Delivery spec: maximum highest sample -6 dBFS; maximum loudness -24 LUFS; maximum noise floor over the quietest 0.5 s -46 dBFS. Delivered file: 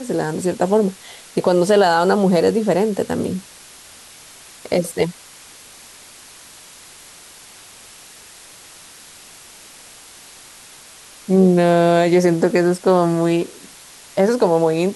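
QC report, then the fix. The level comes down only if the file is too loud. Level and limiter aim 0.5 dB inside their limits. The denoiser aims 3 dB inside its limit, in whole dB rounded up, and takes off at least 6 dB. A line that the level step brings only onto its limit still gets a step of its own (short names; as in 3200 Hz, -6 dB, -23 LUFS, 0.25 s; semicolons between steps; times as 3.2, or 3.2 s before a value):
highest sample -4.5 dBFS: fail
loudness -17.0 LUFS: fail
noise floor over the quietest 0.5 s -43 dBFS: fail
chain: gain -7.5 dB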